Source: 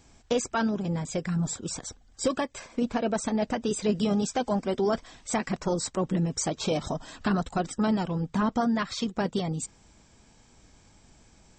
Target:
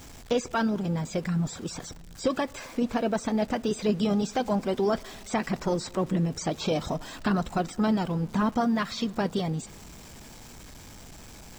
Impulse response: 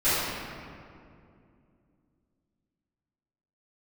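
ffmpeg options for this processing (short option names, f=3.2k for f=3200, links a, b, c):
-filter_complex "[0:a]aeval=exprs='val(0)+0.5*0.0075*sgn(val(0))':c=same,acrossover=split=5300[a][b];[b]acompressor=threshold=-46dB:ratio=4:attack=1:release=60[c];[a][c]amix=inputs=2:normalize=0,asplit=2[d][e];[1:a]atrim=start_sample=2205[f];[e][f]afir=irnorm=-1:irlink=0,volume=-39dB[g];[d][g]amix=inputs=2:normalize=0"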